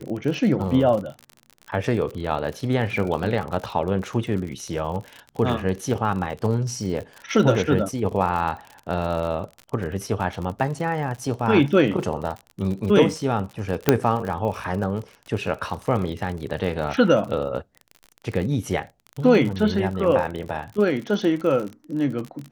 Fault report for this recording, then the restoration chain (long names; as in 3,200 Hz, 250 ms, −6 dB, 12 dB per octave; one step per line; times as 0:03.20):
surface crackle 46 per second −29 dBFS
0:13.89: click −1 dBFS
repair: click removal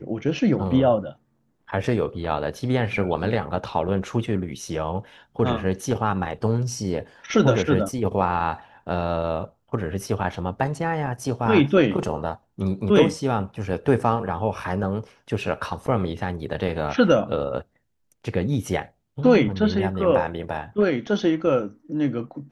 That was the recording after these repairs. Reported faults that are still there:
none of them is left